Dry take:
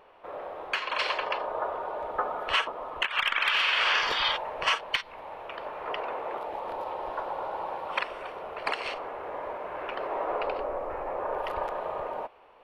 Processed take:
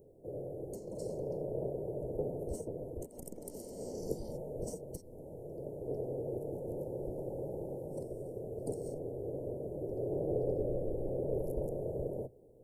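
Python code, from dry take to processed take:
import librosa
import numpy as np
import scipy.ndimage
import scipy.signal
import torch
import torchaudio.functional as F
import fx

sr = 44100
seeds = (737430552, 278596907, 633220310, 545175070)

y = fx.octave_divider(x, sr, octaves=2, level_db=-5.0)
y = scipy.signal.sosfilt(scipy.signal.cheby2(4, 60, [1100.0, 3600.0], 'bandstop', fs=sr, output='sos'), y)
y = F.gain(torch.from_numpy(y), 6.0).numpy()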